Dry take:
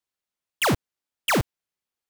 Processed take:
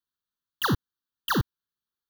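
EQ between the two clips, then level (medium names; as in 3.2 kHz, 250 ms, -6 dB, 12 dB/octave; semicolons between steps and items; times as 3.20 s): Butterworth band-stop 2.2 kHz, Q 2.6; static phaser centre 2.4 kHz, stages 6; band-stop 5.2 kHz, Q 6.5; 0.0 dB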